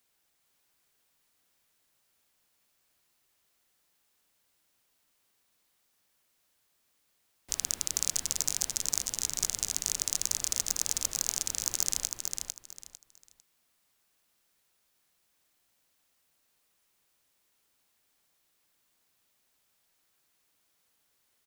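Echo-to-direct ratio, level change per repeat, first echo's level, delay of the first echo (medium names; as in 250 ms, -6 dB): -4.5 dB, -12.5 dB, -5.0 dB, 450 ms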